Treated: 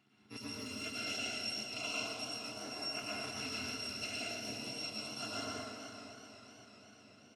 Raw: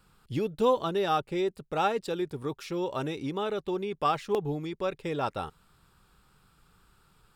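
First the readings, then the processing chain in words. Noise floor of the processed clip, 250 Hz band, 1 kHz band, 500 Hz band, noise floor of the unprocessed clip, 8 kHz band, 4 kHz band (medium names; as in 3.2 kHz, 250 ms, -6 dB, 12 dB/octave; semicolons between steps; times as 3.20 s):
-61 dBFS, -12.5 dB, -17.0 dB, -18.5 dB, -65 dBFS, +7.5 dB, +3.0 dB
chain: bit-reversed sample order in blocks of 256 samples; high-pass 160 Hz 24 dB/octave; peaking EQ 1.3 kHz -7.5 dB 0.85 oct; compression, threshold -29 dBFS, peak gain reduction 10 dB; LFO notch saw up 0.33 Hz 530–4000 Hz; tape spacing loss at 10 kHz 34 dB; on a send: delay 462 ms -12.5 dB; on the sum: plate-style reverb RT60 1.6 s, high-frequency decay 0.6×, pre-delay 95 ms, DRR -5.5 dB; modulated delay 251 ms, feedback 78%, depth 98 cents, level -13.5 dB; trim +7 dB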